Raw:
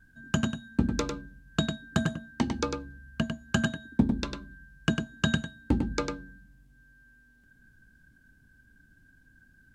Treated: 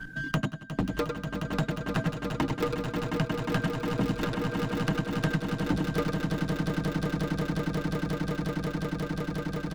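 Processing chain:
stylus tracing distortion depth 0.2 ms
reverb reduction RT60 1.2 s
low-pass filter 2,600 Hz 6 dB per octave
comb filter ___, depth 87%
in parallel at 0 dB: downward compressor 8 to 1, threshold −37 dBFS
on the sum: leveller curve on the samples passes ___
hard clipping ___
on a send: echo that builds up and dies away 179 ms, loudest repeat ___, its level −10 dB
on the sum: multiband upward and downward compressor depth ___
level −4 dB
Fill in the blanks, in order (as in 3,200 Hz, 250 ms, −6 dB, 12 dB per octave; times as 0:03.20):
6.5 ms, 1, −18 dBFS, 8, 70%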